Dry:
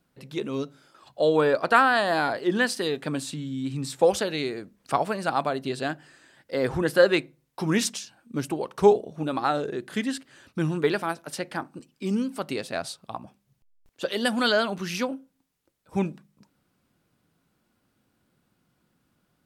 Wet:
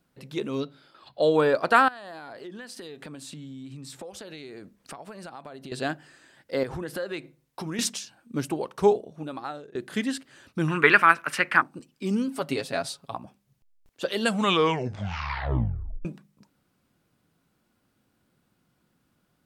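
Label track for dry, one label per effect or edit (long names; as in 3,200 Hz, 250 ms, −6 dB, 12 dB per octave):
0.600000	1.220000	high shelf with overshoot 5,200 Hz −6.5 dB, Q 3
1.880000	5.720000	downward compressor 12 to 1, threshold −37 dBFS
6.630000	7.790000	downward compressor 4 to 1, threshold −31 dBFS
8.520000	9.750000	fade out, to −20.5 dB
10.680000	11.620000	flat-topped bell 1,700 Hz +15.5 dB
12.270000	13.140000	comb filter 7.2 ms, depth 61%
14.140000	14.140000	tape stop 1.91 s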